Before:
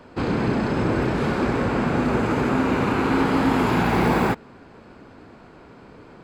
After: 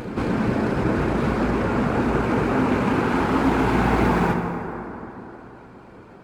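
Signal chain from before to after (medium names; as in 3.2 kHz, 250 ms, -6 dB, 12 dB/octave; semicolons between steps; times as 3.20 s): median filter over 9 samples; reverb removal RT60 0.7 s; on a send: reverse echo 226 ms -8.5 dB; on the sum: plate-style reverb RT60 3.6 s, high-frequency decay 0.45×, DRR 3 dB; loudspeaker Doppler distortion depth 0.16 ms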